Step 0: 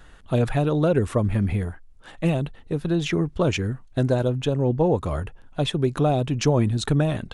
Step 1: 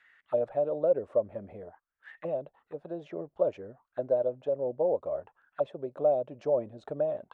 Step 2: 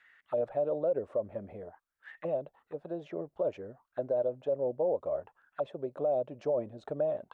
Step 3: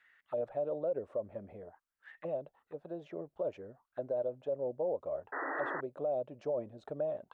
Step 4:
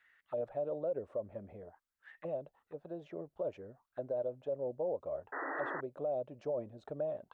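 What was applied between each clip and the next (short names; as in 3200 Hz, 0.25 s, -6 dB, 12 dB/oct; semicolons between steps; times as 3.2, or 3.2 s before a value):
auto-wah 580–2200 Hz, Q 7.3, down, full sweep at -21.5 dBFS; gain +3 dB
limiter -22 dBFS, peak gain reduction 7 dB
painted sound noise, 5.32–5.81, 260–2000 Hz -33 dBFS; gain -4.5 dB
low shelf 120 Hz +5 dB; gain -2 dB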